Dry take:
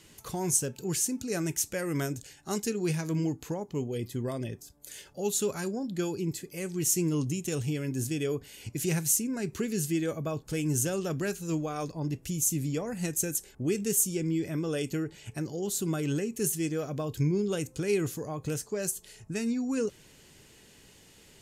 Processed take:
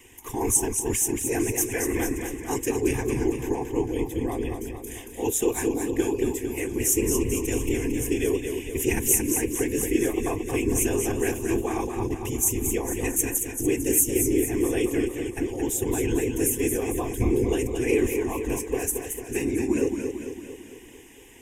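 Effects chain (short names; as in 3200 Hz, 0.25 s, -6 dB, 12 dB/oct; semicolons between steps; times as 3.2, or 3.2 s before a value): whisperiser; fixed phaser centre 890 Hz, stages 8; warbling echo 0.225 s, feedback 56%, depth 75 cents, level -6 dB; gain +7.5 dB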